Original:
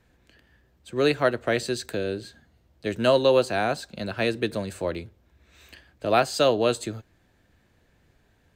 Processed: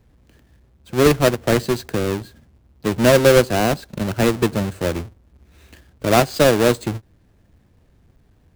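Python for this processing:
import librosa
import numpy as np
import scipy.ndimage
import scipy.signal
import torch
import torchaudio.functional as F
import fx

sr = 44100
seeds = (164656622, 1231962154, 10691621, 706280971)

p1 = fx.halfwave_hold(x, sr)
p2 = fx.low_shelf(p1, sr, hz=430.0, db=8.5)
p3 = np.sign(p2) * np.maximum(np.abs(p2) - 10.0 ** (-29.0 / 20.0), 0.0)
p4 = p2 + (p3 * librosa.db_to_amplitude(-4.0))
p5 = fx.end_taper(p4, sr, db_per_s=450.0)
y = p5 * librosa.db_to_amplitude(-4.5)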